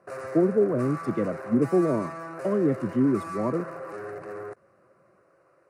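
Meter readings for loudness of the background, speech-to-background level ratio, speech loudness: −37.0 LKFS, 11.5 dB, −25.5 LKFS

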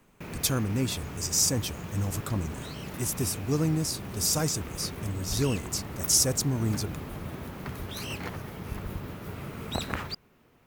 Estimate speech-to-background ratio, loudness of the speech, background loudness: 10.0 dB, −28.0 LKFS, −38.0 LKFS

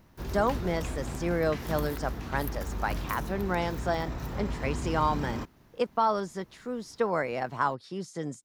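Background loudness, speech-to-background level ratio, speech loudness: −36.5 LKFS, 5.0 dB, −31.5 LKFS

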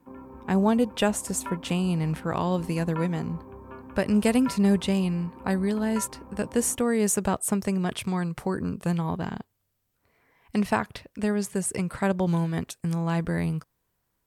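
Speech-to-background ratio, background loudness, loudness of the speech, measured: 16.5 dB, −43.0 LKFS, −26.5 LKFS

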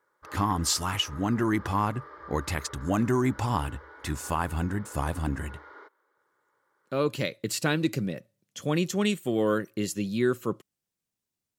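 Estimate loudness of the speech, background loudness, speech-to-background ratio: −29.0 LKFS, −47.5 LKFS, 18.5 dB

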